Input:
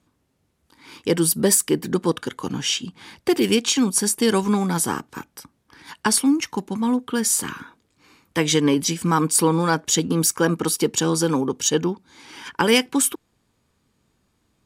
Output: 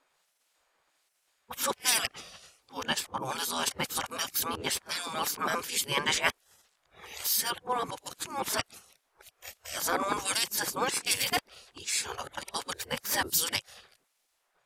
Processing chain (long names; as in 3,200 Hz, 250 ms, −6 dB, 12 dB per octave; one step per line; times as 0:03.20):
played backwards from end to start
two-band tremolo in antiphase 1.3 Hz, depth 70%, crossover 2,300 Hz
gate on every frequency bin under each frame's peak −15 dB weak
level +5 dB